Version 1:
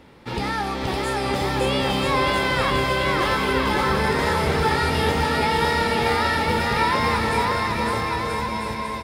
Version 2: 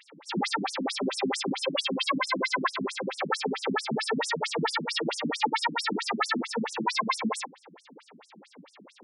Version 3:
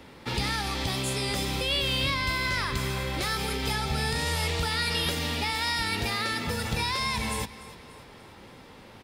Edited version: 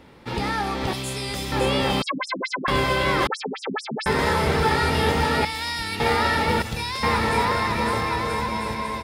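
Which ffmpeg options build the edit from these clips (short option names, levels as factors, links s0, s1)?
-filter_complex "[2:a]asplit=3[s0][s1][s2];[1:a]asplit=2[s3][s4];[0:a]asplit=6[s5][s6][s7][s8][s9][s10];[s5]atrim=end=0.932[s11];[s0]atrim=start=0.928:end=1.522[s12];[s6]atrim=start=1.518:end=2.022[s13];[s3]atrim=start=2.018:end=2.682[s14];[s7]atrim=start=2.678:end=3.272[s15];[s4]atrim=start=3.268:end=4.062[s16];[s8]atrim=start=4.058:end=5.452[s17];[s1]atrim=start=5.448:end=6.002[s18];[s9]atrim=start=5.998:end=6.622[s19];[s2]atrim=start=6.618:end=7.032[s20];[s10]atrim=start=7.028[s21];[s11][s12]acrossfade=d=0.004:c1=hsin:c2=hsin[s22];[s22][s13]acrossfade=d=0.004:c1=hsin:c2=hsin[s23];[s23][s14]acrossfade=d=0.004:c1=hsin:c2=hsin[s24];[s24][s15]acrossfade=d=0.004:c1=hsin:c2=hsin[s25];[s25][s16]acrossfade=d=0.004:c1=hsin:c2=hsin[s26];[s26][s17]acrossfade=d=0.004:c1=hsin:c2=hsin[s27];[s27][s18]acrossfade=d=0.004:c1=hsin:c2=hsin[s28];[s28][s19]acrossfade=d=0.004:c1=hsin:c2=hsin[s29];[s29][s20]acrossfade=d=0.004:c1=hsin:c2=hsin[s30];[s30][s21]acrossfade=d=0.004:c1=hsin:c2=hsin"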